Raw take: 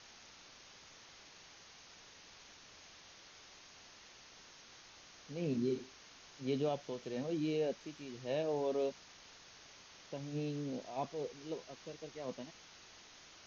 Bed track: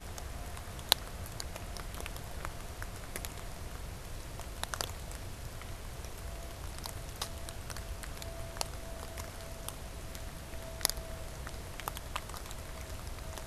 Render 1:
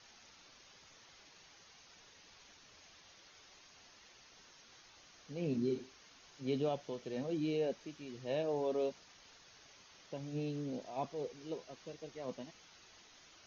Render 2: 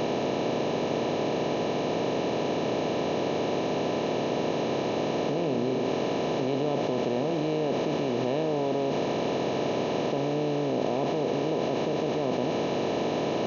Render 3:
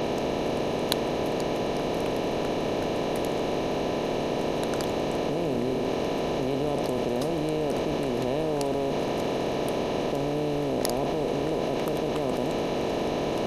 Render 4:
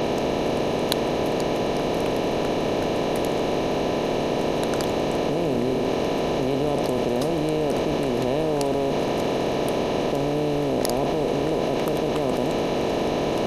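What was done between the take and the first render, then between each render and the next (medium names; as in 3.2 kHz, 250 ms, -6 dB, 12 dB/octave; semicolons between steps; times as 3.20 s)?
noise reduction 6 dB, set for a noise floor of -59 dBFS
spectral levelling over time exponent 0.2; in parallel at -1.5 dB: compressor with a negative ratio -33 dBFS, ratio -0.5
add bed track -2 dB
trim +4 dB; peak limiter -3 dBFS, peak gain reduction 2.5 dB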